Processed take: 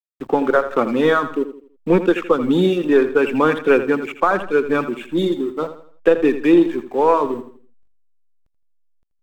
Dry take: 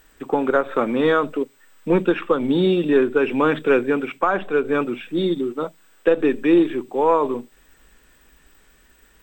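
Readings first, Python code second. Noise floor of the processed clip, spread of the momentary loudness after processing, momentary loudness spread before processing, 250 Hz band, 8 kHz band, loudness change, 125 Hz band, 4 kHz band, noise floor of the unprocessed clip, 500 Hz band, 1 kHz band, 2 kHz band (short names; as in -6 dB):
-64 dBFS, 9 LU, 9 LU, +2.0 dB, n/a, +2.5 dB, +1.5 dB, +1.0 dB, -56 dBFS, +2.5 dB, +2.5 dB, +2.5 dB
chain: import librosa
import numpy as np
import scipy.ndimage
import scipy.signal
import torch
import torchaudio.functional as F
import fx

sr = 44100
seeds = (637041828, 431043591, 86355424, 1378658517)

y = fx.dereverb_blind(x, sr, rt60_s=0.69)
y = fx.backlash(y, sr, play_db=-36.5)
y = fx.echo_feedback(y, sr, ms=82, feedback_pct=37, wet_db=-12)
y = y * 10.0 ** (3.0 / 20.0)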